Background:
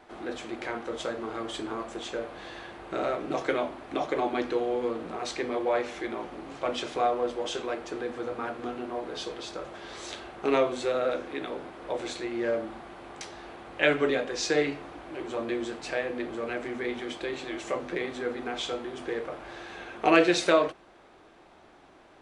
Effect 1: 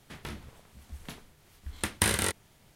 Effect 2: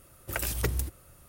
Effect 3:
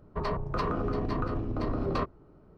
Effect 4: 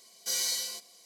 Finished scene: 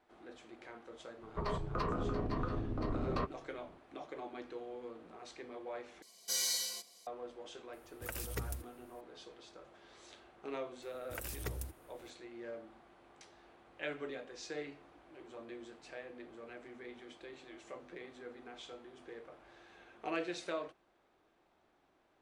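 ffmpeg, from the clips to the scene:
ffmpeg -i bed.wav -i cue0.wav -i cue1.wav -i cue2.wav -i cue3.wav -filter_complex "[2:a]asplit=2[link_01][link_02];[0:a]volume=-17.5dB,asplit=2[link_03][link_04];[link_03]atrim=end=6.024[link_05];[4:a]atrim=end=1.05,asetpts=PTS-STARTPTS,volume=-4dB[link_06];[link_04]atrim=start=7.066[link_07];[3:a]atrim=end=2.57,asetpts=PTS-STARTPTS,volume=-6dB,afade=type=in:duration=0.004:curve=hsin,afade=type=out:start_time=2.566:duration=0.004:curve=hsin,adelay=1210[link_08];[link_01]atrim=end=1.28,asetpts=PTS-STARTPTS,volume=-11dB,afade=type=in:duration=0.004:curve=hsin,afade=type=out:start_time=1.276:duration=0.004:curve=hsin,adelay=7730[link_09];[link_02]atrim=end=1.28,asetpts=PTS-STARTPTS,volume=-12dB,afade=type=in:duration=0.004:curve=hsin,afade=type=out:start_time=1.276:duration=0.004:curve=hsin,adelay=477162S[link_10];[link_05][link_06]acrossfade=duration=0.004:curve1=hsin:curve2=hsin[link_11];[link_11][link_07]acrossfade=duration=0.004:curve1=hsin:curve2=hsin[link_12];[link_12][link_08][link_09][link_10]amix=inputs=4:normalize=0" out.wav

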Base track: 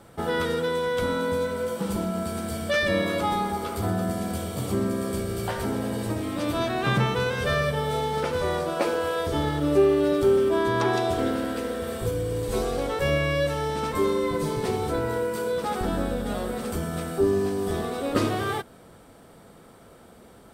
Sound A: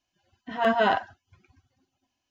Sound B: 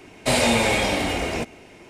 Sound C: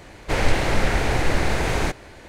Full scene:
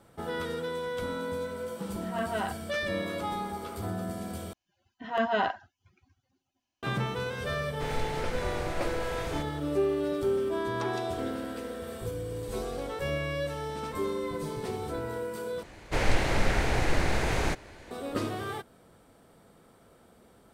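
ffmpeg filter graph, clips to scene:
ffmpeg -i bed.wav -i cue0.wav -i cue1.wav -i cue2.wav -filter_complex "[1:a]asplit=2[link_01][link_02];[3:a]asplit=2[link_03][link_04];[0:a]volume=-8dB,asplit=3[link_05][link_06][link_07];[link_05]atrim=end=4.534[link_08];[link_02]atrim=end=2.3,asetpts=PTS-STARTPTS,volume=-5dB[link_09];[link_06]atrim=start=6.826:end=15.634[link_10];[link_04]atrim=end=2.28,asetpts=PTS-STARTPTS,volume=-5.5dB[link_11];[link_07]atrim=start=17.906[link_12];[link_01]atrim=end=2.3,asetpts=PTS-STARTPTS,volume=-10.5dB,afade=type=in:duration=0.004:curve=hsin,afade=type=out:start_time=2.296:duration=0.004:curve=hsin,adelay=1540[link_13];[link_03]atrim=end=2.28,asetpts=PTS-STARTPTS,volume=-14.5dB,afade=type=in:duration=0.004:curve=hsin,afade=type=out:start_time=2.276:duration=0.004:curve=hsin,adelay=7510[link_14];[link_08][link_09]acrossfade=duration=0.004:curve1=hsin:curve2=hsin[link_15];[link_15][link_10]acrossfade=duration=0.004:curve1=hsin:curve2=hsin[link_16];[link_16][link_11]acrossfade=duration=0.004:curve1=hsin:curve2=hsin[link_17];[link_17][link_12]acrossfade=duration=0.004:curve1=hsin:curve2=hsin[link_18];[link_18][link_13][link_14]amix=inputs=3:normalize=0" out.wav

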